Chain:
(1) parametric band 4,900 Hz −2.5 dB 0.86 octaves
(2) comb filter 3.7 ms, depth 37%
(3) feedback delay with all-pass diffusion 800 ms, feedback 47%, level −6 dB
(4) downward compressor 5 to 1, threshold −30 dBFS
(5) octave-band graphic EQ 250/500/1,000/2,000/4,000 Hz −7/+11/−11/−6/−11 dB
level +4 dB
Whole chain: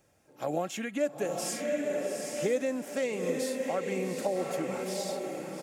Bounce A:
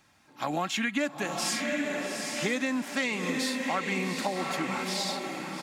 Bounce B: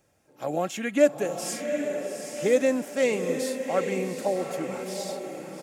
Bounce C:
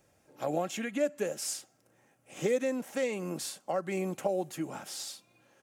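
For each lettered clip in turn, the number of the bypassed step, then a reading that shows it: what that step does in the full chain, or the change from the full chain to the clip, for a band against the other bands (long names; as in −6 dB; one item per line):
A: 5, 500 Hz band −9.5 dB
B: 4, average gain reduction 3.0 dB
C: 3, change in momentary loudness spread +4 LU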